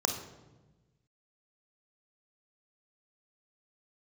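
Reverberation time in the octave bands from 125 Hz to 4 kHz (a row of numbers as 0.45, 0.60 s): 1.7, 1.6, 1.3, 1.0, 0.90, 0.75 s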